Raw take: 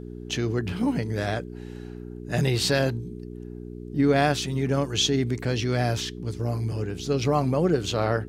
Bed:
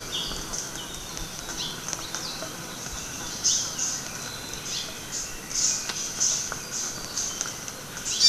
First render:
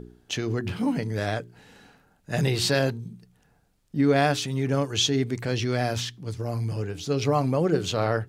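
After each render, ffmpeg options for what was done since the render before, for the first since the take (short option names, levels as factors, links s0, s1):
-af "bandreject=f=60:t=h:w=4,bandreject=f=120:t=h:w=4,bandreject=f=180:t=h:w=4,bandreject=f=240:t=h:w=4,bandreject=f=300:t=h:w=4,bandreject=f=360:t=h:w=4,bandreject=f=420:t=h:w=4"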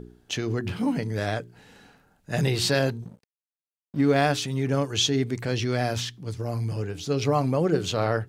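-filter_complex "[0:a]asettb=1/sr,asplit=3[s0][s1][s2];[s0]atrim=end=3.024[s3];[s1]atrim=start=3.02:end=4.3,asetpts=PTS-STARTPTS,afade=t=in:d=0.004:c=qsin,afade=t=out:st=1.276:d=0.004:c=qsin,aeval=exprs='sgn(val(0))*max(abs(val(0))-0.00501,0)':c=same[s4];[s2]atrim=start=4.296[s5];[s3][s4]acrossfade=d=0.004:c1=hsin:c2=qsin[s6];[s6][s5]acrossfade=d=0.004:c1=qsin:c2=hsin"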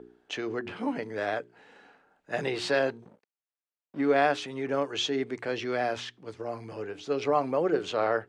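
-filter_complex "[0:a]lowpass=f=9500:w=0.5412,lowpass=f=9500:w=1.3066,acrossover=split=290 2900:gain=0.0891 1 0.224[s0][s1][s2];[s0][s1][s2]amix=inputs=3:normalize=0"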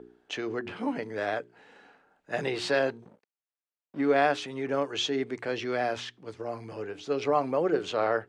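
-af anull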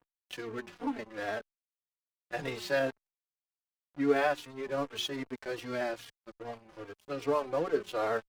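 -filter_complex "[0:a]aeval=exprs='sgn(val(0))*max(abs(val(0))-0.0112,0)':c=same,asplit=2[s0][s1];[s1]adelay=3.7,afreqshift=-2.5[s2];[s0][s2]amix=inputs=2:normalize=1"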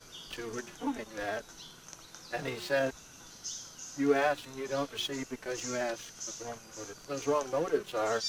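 -filter_complex "[1:a]volume=0.133[s0];[0:a][s0]amix=inputs=2:normalize=0"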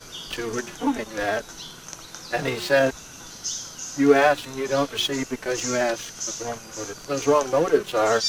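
-af "volume=3.35"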